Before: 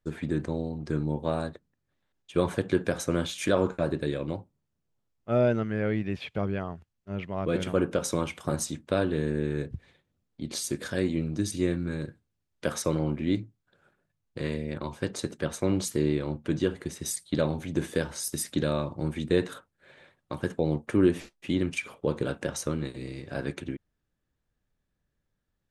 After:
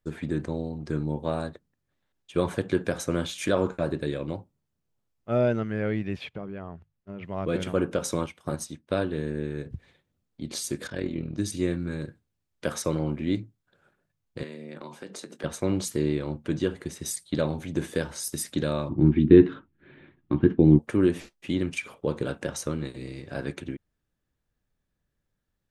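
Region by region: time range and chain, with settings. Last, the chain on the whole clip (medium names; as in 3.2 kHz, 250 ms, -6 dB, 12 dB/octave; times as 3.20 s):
6.29–7.25 s: low-pass 2 kHz 6 dB/octave + compression 3:1, threshold -32 dBFS + hum notches 50/100/150 Hz
8.26–9.66 s: band-stop 7.3 kHz, Q 9 + upward expansion, over -48 dBFS
10.87–11.38 s: low-pass 4.6 kHz + AM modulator 41 Hz, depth 60% + de-hum 189.4 Hz, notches 27
14.43–15.44 s: high-pass 170 Hz 24 dB/octave + compression, threshold -36 dBFS + doubling 21 ms -12.5 dB
18.89–20.79 s: low-pass 3.2 kHz 24 dB/octave + resonant low shelf 420 Hz +8.5 dB, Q 3 + doubling 14 ms -13 dB
whole clip: none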